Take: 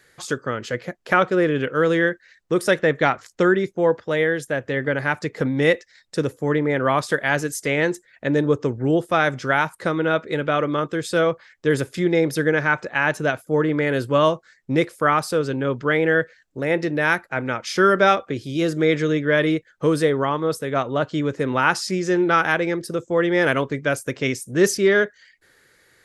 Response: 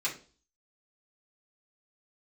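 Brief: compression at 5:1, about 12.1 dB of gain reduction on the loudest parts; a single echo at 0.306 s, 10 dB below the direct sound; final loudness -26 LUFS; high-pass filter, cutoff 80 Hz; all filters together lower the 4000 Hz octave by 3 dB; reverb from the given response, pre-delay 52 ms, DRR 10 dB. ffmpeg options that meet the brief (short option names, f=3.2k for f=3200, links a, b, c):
-filter_complex "[0:a]highpass=80,equalizer=f=4k:t=o:g=-4,acompressor=threshold=-26dB:ratio=5,aecho=1:1:306:0.316,asplit=2[a][b];[1:a]atrim=start_sample=2205,adelay=52[c];[b][c]afir=irnorm=-1:irlink=0,volume=-16dB[d];[a][d]amix=inputs=2:normalize=0,volume=3.5dB"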